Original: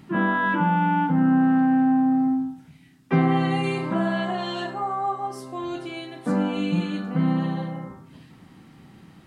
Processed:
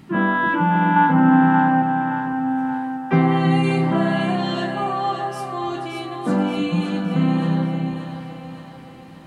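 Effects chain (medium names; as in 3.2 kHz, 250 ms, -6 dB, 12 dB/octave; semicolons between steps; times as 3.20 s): 0.96–1.82 s: peaking EQ 1.1 kHz +7 dB 2.1 oct; on a send: two-band feedback delay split 410 Hz, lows 322 ms, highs 575 ms, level -7 dB; on the sum: trim +3 dB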